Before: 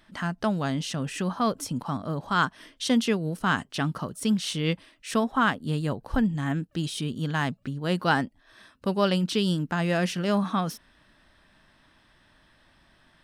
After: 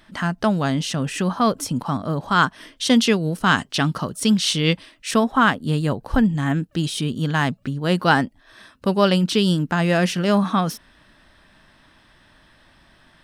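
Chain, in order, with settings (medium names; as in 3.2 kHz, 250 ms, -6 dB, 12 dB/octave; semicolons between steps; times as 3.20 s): 2.89–5.11 s: dynamic bell 4.6 kHz, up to +5 dB, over -46 dBFS, Q 0.73; trim +6.5 dB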